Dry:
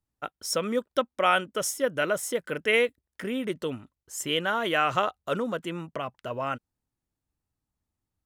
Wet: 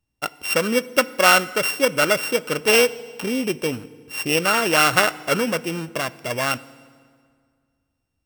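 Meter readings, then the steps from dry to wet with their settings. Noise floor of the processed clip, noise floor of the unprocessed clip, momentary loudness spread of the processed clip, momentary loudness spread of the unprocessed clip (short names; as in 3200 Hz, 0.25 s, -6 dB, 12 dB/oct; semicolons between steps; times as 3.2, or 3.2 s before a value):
-75 dBFS, under -85 dBFS, 12 LU, 12 LU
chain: sample sorter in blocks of 16 samples; FDN reverb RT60 2 s, low-frequency decay 1.2×, high-frequency decay 0.75×, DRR 17 dB; dynamic EQ 1400 Hz, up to +4 dB, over -42 dBFS, Q 2.9; gain +7 dB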